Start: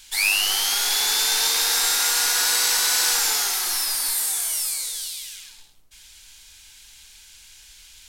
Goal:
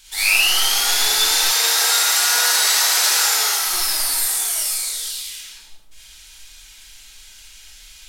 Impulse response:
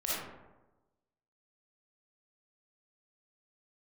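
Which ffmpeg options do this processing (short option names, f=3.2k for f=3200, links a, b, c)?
-filter_complex "[0:a]asettb=1/sr,asplit=3[a][b][c];[a]atrim=end=1.384[d];[b]atrim=start=1.38:end=3.6,asetpts=PTS-STARTPTS,afade=t=in:d=0.004:c=qsin,afade=t=out:st=2.216:d=0.004:c=qsin,highpass=f=380:w=0.5412,highpass=f=380:w=1.3066[e];[c]atrim=start=3.596[f];[d][e]acrossfade=d=0.004:c1=hsin:c2=qsin[g];[g][f]acrossfade=d=0.004:c1=qsin:c2=hsin[h];[1:a]atrim=start_sample=2205,atrim=end_sample=6615[i];[h][i]afir=irnorm=-1:irlink=0"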